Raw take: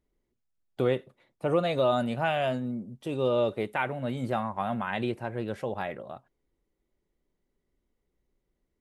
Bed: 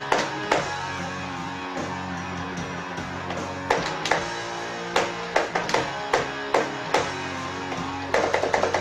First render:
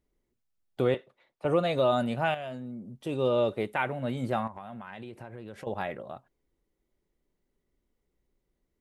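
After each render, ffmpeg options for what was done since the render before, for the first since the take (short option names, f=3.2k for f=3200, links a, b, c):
-filter_complex "[0:a]asettb=1/sr,asplit=3[a][b][c];[a]atrim=end=0.944[d];[b]atrim=start=0.94:end=1.45,asetpts=PTS-STARTPTS,afade=t=in:d=0.004:c=qsin,afade=t=out:st=0.506:d=0.004:c=qsin,acrossover=split=440 6300:gain=0.251 1 0.251[e][f][g];[e][f][g]amix=inputs=3:normalize=0[h];[c]atrim=start=1.446[i];[d][h]acrossfade=d=0.004:c1=hsin:c2=qsin[j];[j][i]acrossfade=d=0.004:c1=qsin:c2=hsin,asettb=1/sr,asplit=3[k][l][m];[k]atrim=end=2.344[n];[l]atrim=start=2.34:end=3.06,asetpts=PTS-STARTPTS,afade=t=in:d=0.004:c=qsin,afade=t=out:st=0.716:d=0.004:c=qsin,acompressor=threshold=-39dB:ratio=2.5:attack=3.2:release=140:knee=1:detection=peak[o];[m]atrim=start=3.056[p];[n][o]acrossfade=d=0.004:c1=hsin:c2=qsin[q];[q][p]acrossfade=d=0.004:c1=qsin:c2=hsin,asettb=1/sr,asplit=3[r][s][t];[r]atrim=end=4.474[u];[s]atrim=start=4.47:end=5.67,asetpts=PTS-STARTPTS,afade=t=in:d=0.004:c=qsin,afade=t=out:st=1.196:d=0.004:c=qsin,acompressor=threshold=-38dB:ratio=8:attack=3.2:release=140:knee=1:detection=peak[v];[t]atrim=start=5.666[w];[u][v]acrossfade=d=0.004:c1=hsin:c2=qsin[x];[x][w]acrossfade=d=0.004:c1=qsin:c2=hsin"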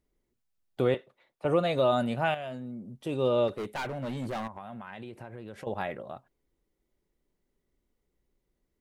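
-filter_complex "[0:a]asplit=3[a][b][c];[a]afade=t=out:st=3.47:d=0.02[d];[b]asoftclip=type=hard:threshold=-30.5dB,afade=t=in:st=3.47:d=0.02,afade=t=out:st=4.54:d=0.02[e];[c]afade=t=in:st=4.54:d=0.02[f];[d][e][f]amix=inputs=3:normalize=0"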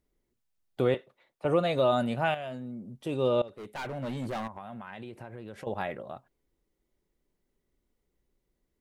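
-filter_complex "[0:a]asplit=2[a][b];[a]atrim=end=3.42,asetpts=PTS-STARTPTS,afade=t=out:st=3.416:d=0.004:c=hsin:silence=0.0891251[c];[b]atrim=start=3.42,asetpts=PTS-STARTPTS,afade=t=in:d=0.56:silence=0.0891251[d];[c][d]concat=n=2:v=0:a=1"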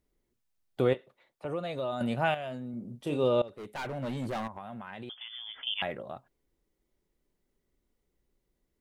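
-filter_complex "[0:a]asettb=1/sr,asplit=3[a][b][c];[a]atrim=end=0.934[d];[b]atrim=start=0.93:end=2.01,asetpts=PTS-STARTPTS,afade=t=in:d=0.004:c=qsin,afade=t=out:st=1.076:d=0.004:c=qsin,acompressor=threshold=-46dB:ratio=1.5:attack=3.2:release=140:knee=1:detection=peak[e];[c]atrim=start=2.006[f];[d][e]acrossfade=d=0.004:c1=hsin:c2=qsin[g];[g][f]acrossfade=d=0.004:c1=qsin:c2=hsin,asettb=1/sr,asplit=3[h][i][j];[h]atrim=end=2.704[k];[i]atrim=start=2.7:end=3.24,asetpts=PTS-STARTPTS,afade=t=in:d=0.004:c=qsin,afade=t=out:st=0.536:d=0.004:c=qsin,asplit=2[l][m];[m]adelay=34,volume=-7dB[n];[l][n]amix=inputs=2:normalize=0,atrim=end_sample=23814[o];[j]atrim=start=3.236[p];[k][o]acrossfade=d=0.004:c1=hsin:c2=qsin[q];[q][p]acrossfade=d=0.004:c1=qsin:c2=hsin,asettb=1/sr,asplit=3[r][s][t];[r]atrim=end=5.094[u];[s]atrim=start=5.09:end=5.82,asetpts=PTS-STARTPTS,afade=t=in:d=0.004:c=qsin,afade=t=out:st=0.726:d=0.004:c=qsin,lowpass=f=3.1k:t=q:w=0.5098,lowpass=f=3.1k:t=q:w=0.6013,lowpass=f=3.1k:t=q:w=0.9,lowpass=f=3.1k:t=q:w=2.563,afreqshift=-3600[v];[t]atrim=start=5.816[w];[u][v]acrossfade=d=0.004:c1=hsin:c2=qsin[x];[x][w]acrossfade=d=0.004:c1=qsin:c2=hsin"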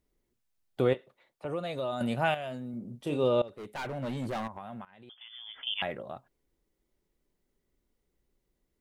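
-filter_complex "[0:a]asettb=1/sr,asplit=3[a][b][c];[a]atrim=end=1.534[d];[b]atrim=start=1.53:end=2.78,asetpts=PTS-STARTPTS,afade=t=in:d=0.004:c=qsin,afade=t=out:st=1.246:d=0.004:c=qsin,highshelf=f=6.2k:g=6[e];[c]atrim=start=2.776[f];[d][e]acrossfade=d=0.004:c1=hsin:c2=qsin[g];[g][f]acrossfade=d=0.004:c1=qsin:c2=hsin,asplit=2[h][i];[h]atrim=end=4.85,asetpts=PTS-STARTPTS,afade=t=out:st=4.846:d=0.004:c=hsin:silence=0.11885[j];[i]atrim=start=4.85,asetpts=PTS-STARTPTS,afade=t=in:d=0.89:silence=0.11885[k];[j][k]concat=n=2:v=0:a=1"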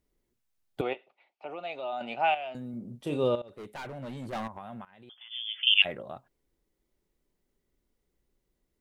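-filter_complex "[0:a]asettb=1/sr,asplit=3[a][b][c];[a]atrim=end=0.814[d];[b]atrim=start=0.81:end=2.55,asetpts=PTS-STARTPTS,afade=t=in:d=0.004:c=qsin,afade=t=out:st=1.736:d=0.004:c=qsin,highpass=450,equalizer=f=510:t=q:w=4:g=-7,equalizer=f=780:t=q:w=4:g=8,equalizer=f=1.1k:t=q:w=4:g=-5,equalizer=f=1.7k:t=q:w=4:g=-8,equalizer=f=2.5k:t=q:w=4:g=8,equalizer=f=3.8k:t=q:w=4:g=-6,lowpass=f=4.7k:w=0.5412,lowpass=f=4.7k:w=1.3066[e];[c]atrim=start=2.546[f];[d][e]acrossfade=d=0.004:c1=hsin:c2=qsin[g];[g][f]acrossfade=d=0.004:c1=qsin:c2=hsin,asettb=1/sr,asplit=3[h][i][j];[h]atrim=end=3.354[k];[i]atrim=start=3.35:end=4.33,asetpts=PTS-STARTPTS,afade=t=in:d=0.004:c=qsin,afade=t=out:st=0.976:d=0.004:c=qsin,acompressor=threshold=-39dB:ratio=2.5:attack=3.2:release=140:knee=1:detection=peak[l];[j]atrim=start=4.326[m];[k][l]acrossfade=d=0.004:c1=hsin:c2=qsin[n];[n][m]acrossfade=d=0.004:c1=qsin:c2=hsin,asplit=3[o][p][q];[o]afade=t=out:st=5.3:d=0.02[r];[p]highpass=f=2.7k:t=q:w=6.8,afade=t=in:st=5.3:d=0.02,afade=t=out:st=5.84:d=0.02[s];[q]afade=t=in:st=5.84:d=0.02[t];[r][s][t]amix=inputs=3:normalize=0"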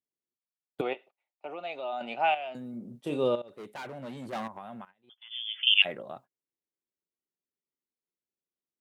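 -af "highpass=160,agate=range=-20dB:threshold=-50dB:ratio=16:detection=peak"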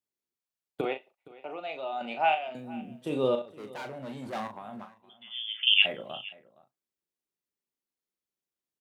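-filter_complex "[0:a]asplit=2[a][b];[b]adelay=38,volume=-8dB[c];[a][c]amix=inputs=2:normalize=0,aecho=1:1:467:0.0944"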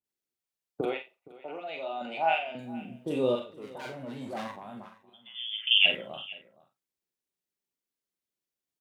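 -filter_complex "[0:a]asplit=2[a][b];[b]adelay=49,volume=-9dB[c];[a][c]amix=inputs=2:normalize=0,acrossover=split=1100[d][e];[e]adelay=40[f];[d][f]amix=inputs=2:normalize=0"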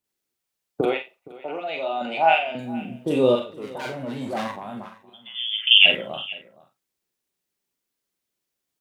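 -af "volume=8.5dB,alimiter=limit=-1dB:level=0:latency=1"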